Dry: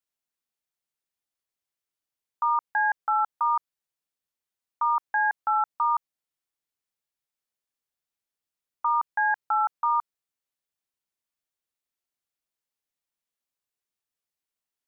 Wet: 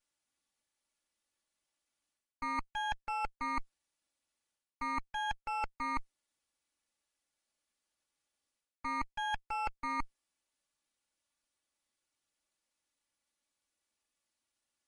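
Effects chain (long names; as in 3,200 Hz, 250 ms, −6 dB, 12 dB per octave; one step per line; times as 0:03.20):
lower of the sound and its delayed copy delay 3.5 ms
reversed playback
downward compressor 10 to 1, threshold −40 dBFS, peak gain reduction 18 dB
reversed playback
level +6.5 dB
MP3 48 kbit/s 44,100 Hz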